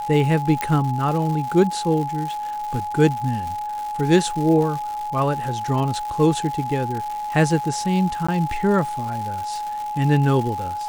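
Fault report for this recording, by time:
surface crackle 270 per second −28 dBFS
whistle 840 Hz −25 dBFS
0:00.61: click −8 dBFS
0:08.27–0:08.29: drop-out 15 ms

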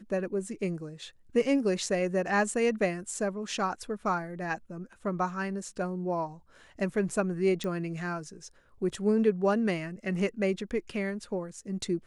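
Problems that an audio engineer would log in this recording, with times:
0:07.64: click −21 dBFS

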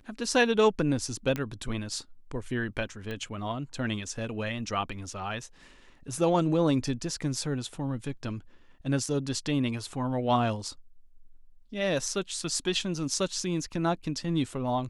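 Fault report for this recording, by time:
0:01.36: click −17 dBFS
0:03.11: click −24 dBFS

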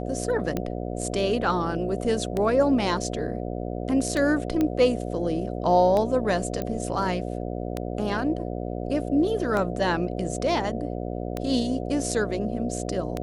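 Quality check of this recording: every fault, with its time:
mains buzz 60 Hz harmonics 12 −31 dBFS
scratch tick 33 1/3 rpm −14 dBFS
0:04.61: click −13 dBFS
0:06.62: click −16 dBFS

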